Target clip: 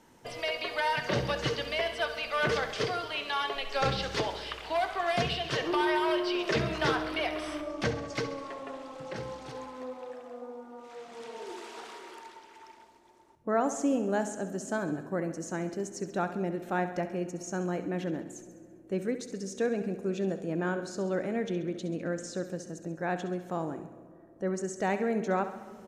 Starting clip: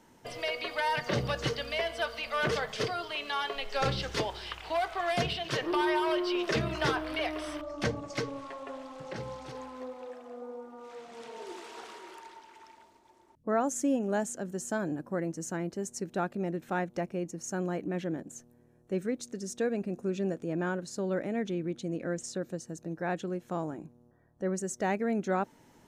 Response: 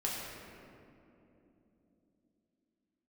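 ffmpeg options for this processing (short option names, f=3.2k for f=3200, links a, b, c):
-filter_complex "[0:a]acrossover=split=6900[a][b];[b]acompressor=threshold=-54dB:ratio=4:attack=1:release=60[c];[a][c]amix=inputs=2:normalize=0,asplit=2[d][e];[e]highpass=230[f];[1:a]atrim=start_sample=2205[g];[f][g]afir=irnorm=-1:irlink=0,volume=-17.5dB[h];[d][h]amix=inputs=2:normalize=0,aresample=32000,aresample=44100,aecho=1:1:67|134|201|268|335|402:0.251|0.146|0.0845|0.049|0.0284|0.0165"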